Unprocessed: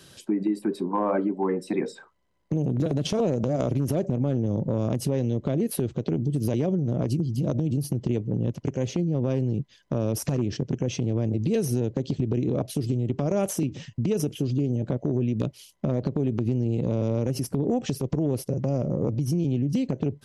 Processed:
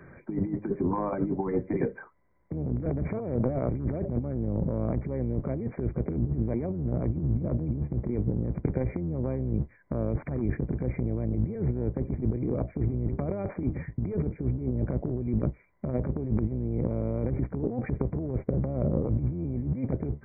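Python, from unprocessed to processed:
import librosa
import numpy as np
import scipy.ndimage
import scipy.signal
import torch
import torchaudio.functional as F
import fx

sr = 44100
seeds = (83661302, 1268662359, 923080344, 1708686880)

y = fx.octave_divider(x, sr, octaves=1, level_db=-5.0)
y = fx.over_compress(y, sr, threshold_db=-27.0, ratio=-0.5)
y = fx.brickwall_lowpass(y, sr, high_hz=2400.0)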